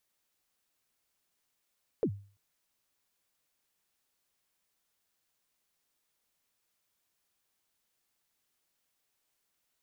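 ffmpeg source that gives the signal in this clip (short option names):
-f lavfi -i "aevalsrc='0.075*pow(10,-3*t/0.41)*sin(2*PI*(520*0.072/log(100/520)*(exp(log(100/520)*min(t,0.072)/0.072)-1)+100*max(t-0.072,0)))':d=0.34:s=44100"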